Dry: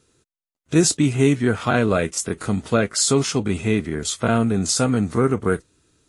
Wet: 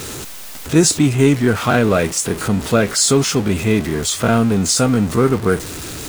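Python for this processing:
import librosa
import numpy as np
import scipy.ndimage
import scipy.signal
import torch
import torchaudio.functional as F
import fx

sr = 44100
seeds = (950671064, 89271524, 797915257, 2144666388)

y = x + 0.5 * 10.0 ** (-26.0 / 20.0) * np.sign(x)
y = y * librosa.db_to_amplitude(3.0)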